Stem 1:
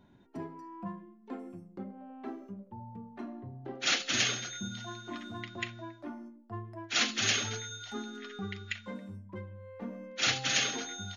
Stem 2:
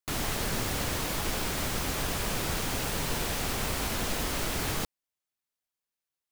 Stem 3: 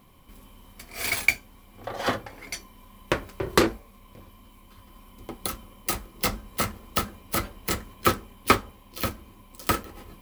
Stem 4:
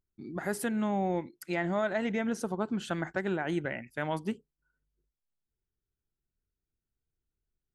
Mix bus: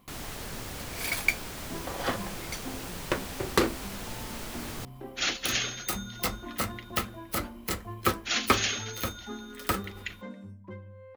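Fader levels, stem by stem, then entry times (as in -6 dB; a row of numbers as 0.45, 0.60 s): -0.5 dB, -8.0 dB, -4.5 dB, off; 1.35 s, 0.00 s, 0.00 s, off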